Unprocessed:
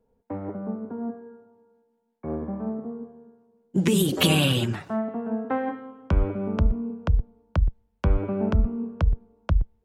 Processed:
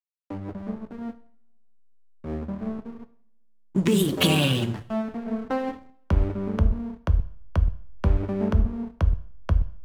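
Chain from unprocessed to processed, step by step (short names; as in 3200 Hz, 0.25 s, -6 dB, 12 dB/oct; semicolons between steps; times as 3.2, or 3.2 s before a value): backlash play -29 dBFS; two-slope reverb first 0.55 s, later 1.8 s, from -27 dB, DRR 11.5 dB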